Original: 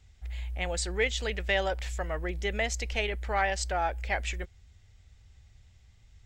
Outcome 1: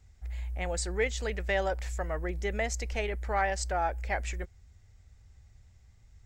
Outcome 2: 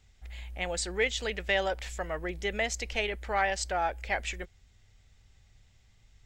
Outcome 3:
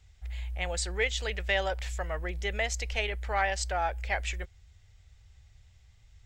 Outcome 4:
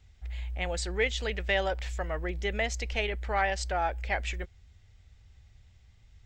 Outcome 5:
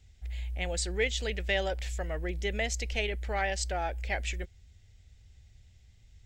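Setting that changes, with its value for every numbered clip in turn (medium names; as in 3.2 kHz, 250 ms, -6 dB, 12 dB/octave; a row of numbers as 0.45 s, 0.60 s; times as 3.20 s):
peaking EQ, frequency: 3.2 kHz, 72 Hz, 260 Hz, 11 kHz, 1.1 kHz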